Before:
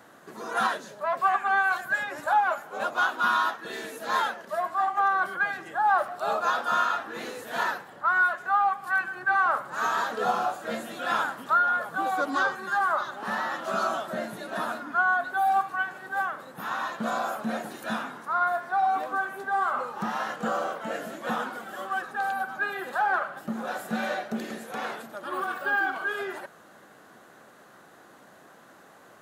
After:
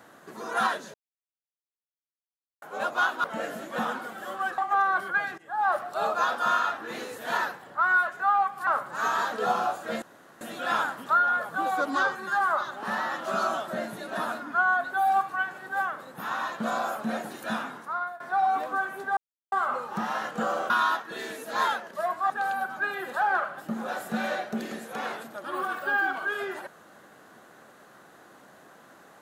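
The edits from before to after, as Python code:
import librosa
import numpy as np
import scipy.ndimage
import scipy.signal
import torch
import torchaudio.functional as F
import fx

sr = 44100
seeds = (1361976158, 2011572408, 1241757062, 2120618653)

y = fx.edit(x, sr, fx.silence(start_s=0.94, length_s=1.68),
    fx.swap(start_s=3.24, length_s=1.6, other_s=20.75, other_length_s=1.34),
    fx.fade_in_from(start_s=5.64, length_s=0.4, floor_db=-18.5),
    fx.cut(start_s=8.93, length_s=0.53),
    fx.insert_room_tone(at_s=10.81, length_s=0.39),
    fx.fade_out_to(start_s=18.15, length_s=0.45, floor_db=-20.0),
    fx.insert_silence(at_s=19.57, length_s=0.35), tone=tone)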